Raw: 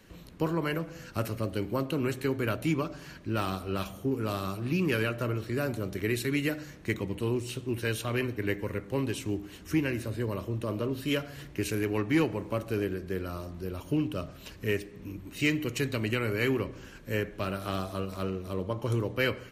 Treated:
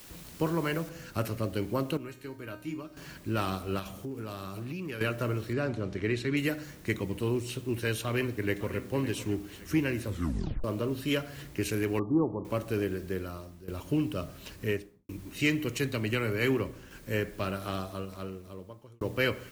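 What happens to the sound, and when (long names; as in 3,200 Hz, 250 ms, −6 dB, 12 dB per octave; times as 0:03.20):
0:00.89: noise floor change −51 dB −59 dB
0:01.97–0:02.97: tuned comb filter 310 Hz, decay 0.36 s, mix 80%
0:03.79–0:05.01: downward compressor, threshold −34 dBFS
0:05.53–0:06.37: high-frequency loss of the air 98 metres
0:08.00–0:08.86: delay throw 560 ms, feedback 35%, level −13 dB
0:10.06: tape stop 0.58 s
0:11.99–0:12.45: Chebyshev low-pass with heavy ripple 1,200 Hz, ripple 3 dB
0:13.10–0:13.68: fade out linear, to −14.5 dB
0:14.61–0:15.09: fade out and dull
0:15.77–0:16.91: multiband upward and downward expander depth 40%
0:17.44–0:19.01: fade out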